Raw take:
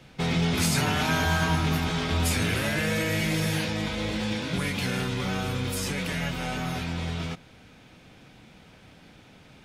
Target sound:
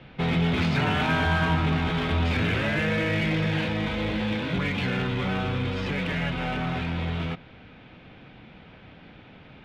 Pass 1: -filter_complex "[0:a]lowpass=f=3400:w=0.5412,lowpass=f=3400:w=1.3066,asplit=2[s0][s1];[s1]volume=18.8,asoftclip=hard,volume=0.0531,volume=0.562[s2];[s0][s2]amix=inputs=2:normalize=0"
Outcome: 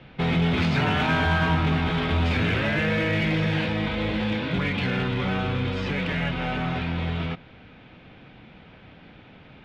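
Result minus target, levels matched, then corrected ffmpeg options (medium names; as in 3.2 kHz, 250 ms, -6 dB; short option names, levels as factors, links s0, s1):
overload inside the chain: distortion -5 dB
-filter_complex "[0:a]lowpass=f=3400:w=0.5412,lowpass=f=3400:w=1.3066,asplit=2[s0][s1];[s1]volume=44.7,asoftclip=hard,volume=0.0224,volume=0.562[s2];[s0][s2]amix=inputs=2:normalize=0"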